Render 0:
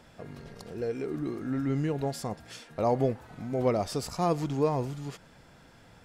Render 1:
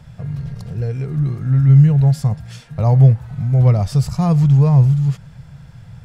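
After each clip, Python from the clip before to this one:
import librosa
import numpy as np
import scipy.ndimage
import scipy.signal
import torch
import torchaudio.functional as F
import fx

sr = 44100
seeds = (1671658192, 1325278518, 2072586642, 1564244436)

y = fx.low_shelf_res(x, sr, hz=200.0, db=13.0, q=3.0)
y = F.gain(torch.from_numpy(y), 4.0).numpy()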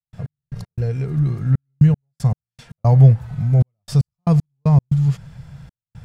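y = fx.step_gate(x, sr, bpm=116, pattern='.x..x.xxxxxx..x.', floor_db=-60.0, edge_ms=4.5)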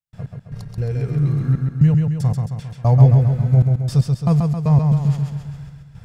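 y = fx.echo_feedback(x, sr, ms=134, feedback_pct=55, wet_db=-4)
y = F.gain(torch.from_numpy(y), -1.0).numpy()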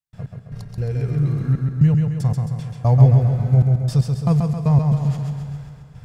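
y = fx.rev_plate(x, sr, seeds[0], rt60_s=2.6, hf_ratio=0.8, predelay_ms=115, drr_db=11.5)
y = F.gain(torch.from_numpy(y), -1.0).numpy()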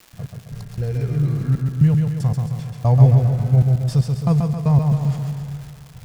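y = fx.dmg_crackle(x, sr, seeds[1], per_s=420.0, level_db=-35.0)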